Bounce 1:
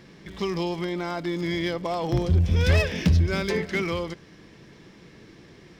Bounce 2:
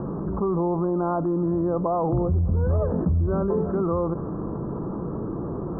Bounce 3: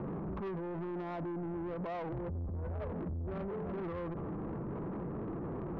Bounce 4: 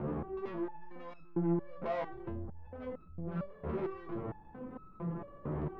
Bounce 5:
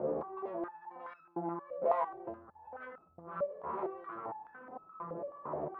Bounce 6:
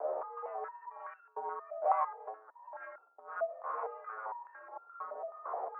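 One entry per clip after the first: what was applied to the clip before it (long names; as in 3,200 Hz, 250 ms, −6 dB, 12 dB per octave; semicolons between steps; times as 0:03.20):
Butterworth low-pass 1,300 Hz 72 dB per octave; envelope flattener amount 70%; level −3.5 dB
brickwall limiter −21 dBFS, peak gain reduction 8 dB; soft clipping −30.5 dBFS, distortion −10 dB; level −5 dB
step-sequenced resonator 4.4 Hz 75–1,300 Hz; level +11.5 dB
band-pass on a step sequencer 4.7 Hz 560–1,500 Hz; level +12 dB
three-way crossover with the lows and the highs turned down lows −19 dB, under 420 Hz, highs −15 dB, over 2,100 Hz; single-sideband voice off tune +88 Hz 240–2,700 Hz; level +2 dB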